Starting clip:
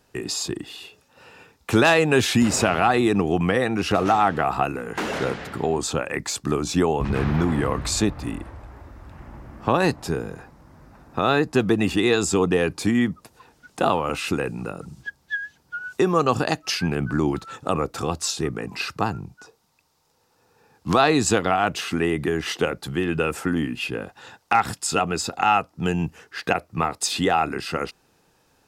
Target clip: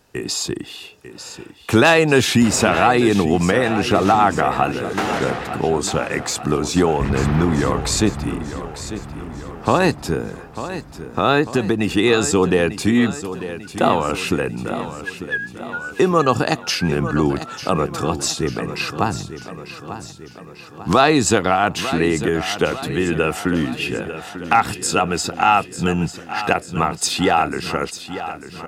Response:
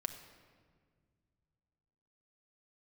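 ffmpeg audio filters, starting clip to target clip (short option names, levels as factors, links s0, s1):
-filter_complex "[0:a]asettb=1/sr,asplit=3[s0][s1][s2];[s0]atrim=end=11.404[s3];[s1]atrim=start=11.4:end=11.96,asetpts=PTS-STARTPTS,afade=t=in:d=0.004:c=qsin,afade=t=out:st=0.556:d=0.004:c=qsin,acompressor=threshold=0.126:ratio=6[s4];[s2]atrim=start=11.956[s5];[s3][s4]acrossfade=d=0.004:c1=hsin:c2=qsin[s6];[s6][s5]acrossfade=d=0.004:c1=qsin:c2=hsin,aecho=1:1:895|1790|2685|3580|4475|5370:0.251|0.136|0.0732|0.0396|0.0214|0.0115,volume=1.58"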